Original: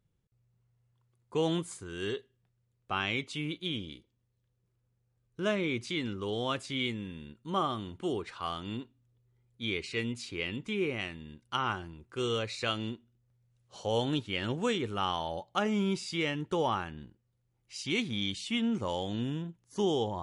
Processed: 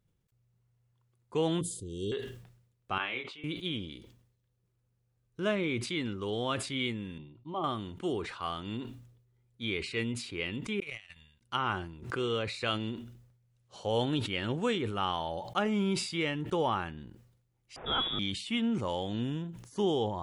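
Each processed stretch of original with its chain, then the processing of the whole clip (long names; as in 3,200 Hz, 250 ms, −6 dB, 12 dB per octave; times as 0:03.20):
0:01.61–0:02.12: Chebyshev band-stop filter 520–3,300 Hz, order 4 + low-shelf EQ 200 Hz +5.5 dB
0:02.98–0:03.44: three-way crossover with the lows and the highs turned down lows −15 dB, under 370 Hz, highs −24 dB, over 3,700 Hz + double-tracking delay 24 ms −4 dB + expander for the loud parts 2.5 to 1, over −47 dBFS
0:07.18–0:07.64: high-frequency loss of the air 360 metres + phaser with its sweep stopped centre 310 Hz, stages 8
0:10.80–0:11.41: guitar amp tone stack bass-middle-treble 10-0-10 + compressor whose output falls as the input rises −49 dBFS + noise gate −47 dBFS, range −43 dB
0:12.02–0:12.48: high-pass filter 92 Hz + high-shelf EQ 8,700 Hz −10 dB + background raised ahead of every attack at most 84 dB per second
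0:17.76–0:18.19: spike at every zero crossing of −23.5 dBFS + voice inversion scrambler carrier 3,600 Hz
whole clip: dynamic equaliser 6,100 Hz, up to −8 dB, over −58 dBFS, Q 1.9; level that may fall only so fast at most 72 dB per second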